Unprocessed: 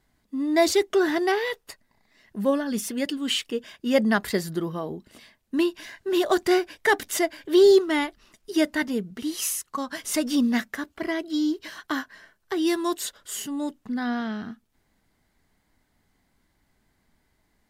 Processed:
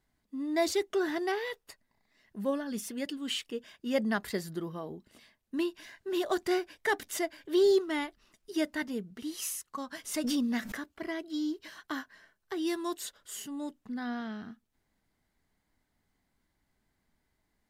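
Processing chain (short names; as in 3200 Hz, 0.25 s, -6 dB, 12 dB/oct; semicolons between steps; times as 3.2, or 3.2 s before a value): 10.24–10.91 backwards sustainer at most 28 dB/s; gain -8.5 dB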